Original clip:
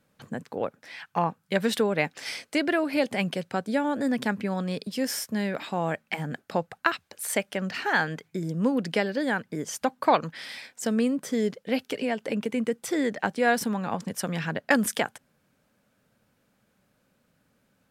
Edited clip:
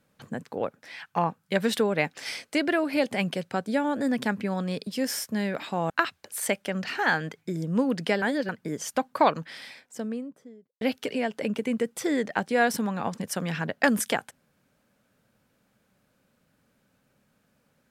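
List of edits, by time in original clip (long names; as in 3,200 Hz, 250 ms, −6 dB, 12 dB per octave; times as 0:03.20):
0:05.90–0:06.77: remove
0:09.09–0:09.36: reverse
0:10.09–0:11.68: fade out and dull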